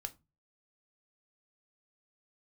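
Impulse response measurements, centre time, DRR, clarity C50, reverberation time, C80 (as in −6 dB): 4 ms, 8.0 dB, 21.0 dB, 0.25 s, 28.0 dB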